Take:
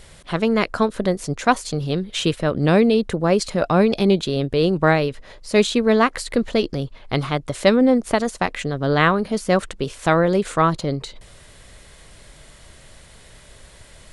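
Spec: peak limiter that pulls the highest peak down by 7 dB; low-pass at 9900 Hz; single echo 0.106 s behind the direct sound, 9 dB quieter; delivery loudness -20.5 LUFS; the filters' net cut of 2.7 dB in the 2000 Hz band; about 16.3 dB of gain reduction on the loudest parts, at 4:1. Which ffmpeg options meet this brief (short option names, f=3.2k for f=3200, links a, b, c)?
-af "lowpass=9.9k,equalizer=f=2k:t=o:g=-3.5,acompressor=threshold=-31dB:ratio=4,alimiter=limit=-24dB:level=0:latency=1,aecho=1:1:106:0.355,volume=14dB"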